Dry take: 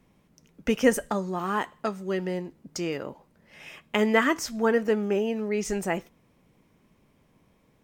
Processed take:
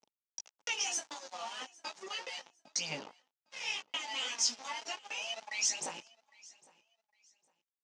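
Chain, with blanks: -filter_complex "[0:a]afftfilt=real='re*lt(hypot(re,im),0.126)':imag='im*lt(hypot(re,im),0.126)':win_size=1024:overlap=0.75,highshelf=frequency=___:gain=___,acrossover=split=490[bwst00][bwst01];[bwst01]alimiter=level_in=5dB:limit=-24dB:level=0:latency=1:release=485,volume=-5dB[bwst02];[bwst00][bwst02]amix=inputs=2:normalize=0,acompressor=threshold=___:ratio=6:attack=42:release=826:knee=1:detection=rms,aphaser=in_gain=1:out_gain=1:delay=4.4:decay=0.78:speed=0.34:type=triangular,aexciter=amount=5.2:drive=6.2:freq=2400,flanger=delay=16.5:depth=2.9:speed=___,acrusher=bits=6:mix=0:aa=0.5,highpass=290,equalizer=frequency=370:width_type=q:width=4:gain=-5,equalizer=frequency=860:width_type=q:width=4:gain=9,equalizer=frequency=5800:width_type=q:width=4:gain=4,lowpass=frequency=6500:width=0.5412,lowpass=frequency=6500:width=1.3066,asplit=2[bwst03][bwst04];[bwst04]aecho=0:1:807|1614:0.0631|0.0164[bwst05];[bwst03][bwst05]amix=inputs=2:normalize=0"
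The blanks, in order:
2100, -5.5, -43dB, 1.8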